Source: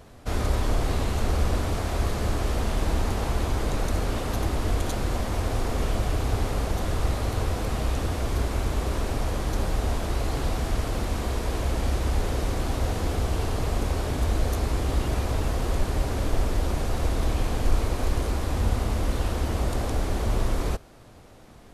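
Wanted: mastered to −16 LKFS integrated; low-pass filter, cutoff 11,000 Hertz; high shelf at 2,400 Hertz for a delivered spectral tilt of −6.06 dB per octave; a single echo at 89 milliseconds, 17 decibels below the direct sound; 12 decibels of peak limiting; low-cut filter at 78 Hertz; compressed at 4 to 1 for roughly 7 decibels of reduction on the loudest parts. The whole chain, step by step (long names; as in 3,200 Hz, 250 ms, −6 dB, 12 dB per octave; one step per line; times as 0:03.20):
high-pass filter 78 Hz
low-pass filter 11,000 Hz
high-shelf EQ 2,400 Hz −7 dB
downward compressor 4 to 1, threshold −33 dBFS
brickwall limiter −35.5 dBFS
single-tap delay 89 ms −17 dB
level +28 dB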